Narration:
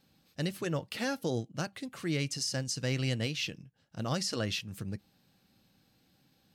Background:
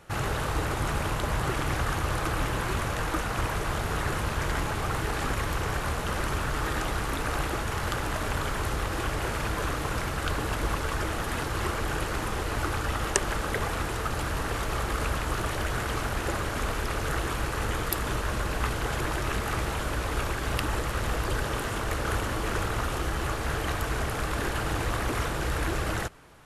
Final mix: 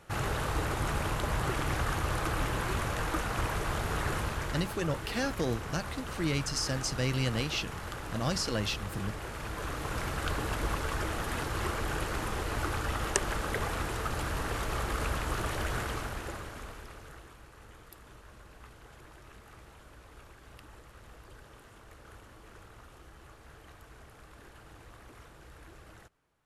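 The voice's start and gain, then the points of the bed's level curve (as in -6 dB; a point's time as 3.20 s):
4.15 s, +1.0 dB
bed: 4.18 s -3 dB
4.75 s -10 dB
9.32 s -10 dB
10.09 s -3.5 dB
15.78 s -3.5 dB
17.39 s -23.5 dB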